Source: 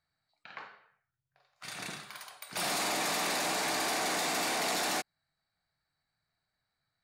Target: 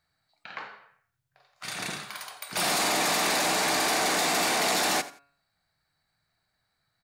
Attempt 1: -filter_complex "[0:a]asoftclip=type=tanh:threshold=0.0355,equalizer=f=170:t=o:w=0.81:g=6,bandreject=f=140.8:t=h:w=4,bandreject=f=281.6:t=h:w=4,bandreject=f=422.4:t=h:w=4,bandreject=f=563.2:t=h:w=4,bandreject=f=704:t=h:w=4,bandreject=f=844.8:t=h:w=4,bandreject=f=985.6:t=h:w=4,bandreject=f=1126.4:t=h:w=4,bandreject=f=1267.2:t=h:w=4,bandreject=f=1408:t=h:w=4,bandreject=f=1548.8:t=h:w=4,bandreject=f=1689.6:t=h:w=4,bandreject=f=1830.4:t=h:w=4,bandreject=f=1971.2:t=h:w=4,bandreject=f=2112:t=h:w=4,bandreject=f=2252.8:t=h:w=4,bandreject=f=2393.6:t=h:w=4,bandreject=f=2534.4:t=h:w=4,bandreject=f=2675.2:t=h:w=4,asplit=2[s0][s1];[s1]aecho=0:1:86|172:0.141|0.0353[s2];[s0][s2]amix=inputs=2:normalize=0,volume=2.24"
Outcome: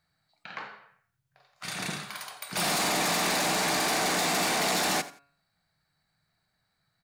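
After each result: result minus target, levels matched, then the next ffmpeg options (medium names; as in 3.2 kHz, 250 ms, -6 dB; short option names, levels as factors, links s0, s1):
saturation: distortion +11 dB; 125 Hz band +5.5 dB
-filter_complex "[0:a]asoftclip=type=tanh:threshold=0.075,equalizer=f=170:t=o:w=0.81:g=6,bandreject=f=140.8:t=h:w=4,bandreject=f=281.6:t=h:w=4,bandreject=f=422.4:t=h:w=4,bandreject=f=563.2:t=h:w=4,bandreject=f=704:t=h:w=4,bandreject=f=844.8:t=h:w=4,bandreject=f=985.6:t=h:w=4,bandreject=f=1126.4:t=h:w=4,bandreject=f=1267.2:t=h:w=4,bandreject=f=1408:t=h:w=4,bandreject=f=1548.8:t=h:w=4,bandreject=f=1689.6:t=h:w=4,bandreject=f=1830.4:t=h:w=4,bandreject=f=1971.2:t=h:w=4,bandreject=f=2112:t=h:w=4,bandreject=f=2252.8:t=h:w=4,bandreject=f=2393.6:t=h:w=4,bandreject=f=2534.4:t=h:w=4,bandreject=f=2675.2:t=h:w=4,asplit=2[s0][s1];[s1]aecho=0:1:86|172:0.141|0.0353[s2];[s0][s2]amix=inputs=2:normalize=0,volume=2.24"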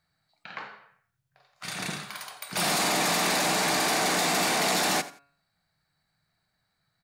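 125 Hz band +5.0 dB
-filter_complex "[0:a]asoftclip=type=tanh:threshold=0.075,bandreject=f=140.8:t=h:w=4,bandreject=f=281.6:t=h:w=4,bandreject=f=422.4:t=h:w=4,bandreject=f=563.2:t=h:w=4,bandreject=f=704:t=h:w=4,bandreject=f=844.8:t=h:w=4,bandreject=f=985.6:t=h:w=4,bandreject=f=1126.4:t=h:w=4,bandreject=f=1267.2:t=h:w=4,bandreject=f=1408:t=h:w=4,bandreject=f=1548.8:t=h:w=4,bandreject=f=1689.6:t=h:w=4,bandreject=f=1830.4:t=h:w=4,bandreject=f=1971.2:t=h:w=4,bandreject=f=2112:t=h:w=4,bandreject=f=2252.8:t=h:w=4,bandreject=f=2393.6:t=h:w=4,bandreject=f=2534.4:t=h:w=4,bandreject=f=2675.2:t=h:w=4,asplit=2[s0][s1];[s1]aecho=0:1:86|172:0.141|0.0353[s2];[s0][s2]amix=inputs=2:normalize=0,volume=2.24"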